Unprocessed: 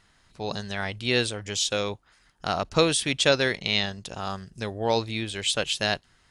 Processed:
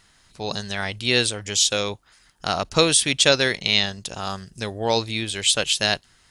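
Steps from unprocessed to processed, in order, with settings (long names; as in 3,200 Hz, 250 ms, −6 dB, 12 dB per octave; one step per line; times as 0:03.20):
high-shelf EQ 3,700 Hz +8.5 dB
level +2 dB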